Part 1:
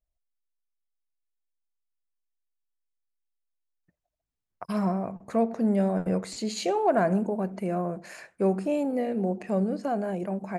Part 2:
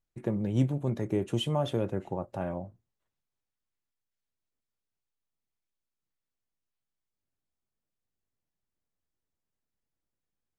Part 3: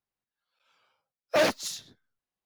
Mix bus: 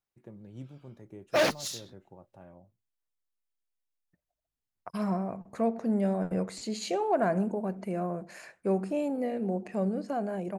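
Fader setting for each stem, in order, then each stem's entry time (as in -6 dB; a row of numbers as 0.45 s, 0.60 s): -3.5 dB, -18.0 dB, -1.5 dB; 0.25 s, 0.00 s, 0.00 s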